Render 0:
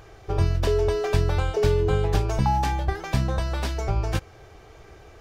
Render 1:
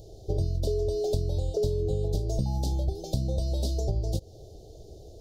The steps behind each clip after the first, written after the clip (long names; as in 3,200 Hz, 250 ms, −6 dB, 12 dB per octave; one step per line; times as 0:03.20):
elliptic band-stop filter 620–4,000 Hz, stop band 50 dB
downward compressor 5 to 1, threshold −26 dBFS, peak gain reduction 10 dB
level +2 dB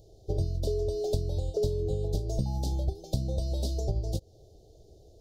expander for the loud parts 1.5 to 1, over −39 dBFS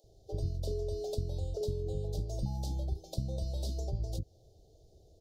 multiband delay without the direct sound highs, lows 40 ms, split 370 Hz
level −5 dB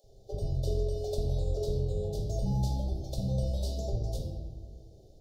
convolution reverb RT60 1.6 s, pre-delay 4 ms, DRR −0.5 dB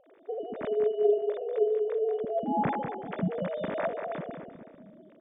three sine waves on the formant tracks
repeating echo 191 ms, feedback 31%, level −7.5 dB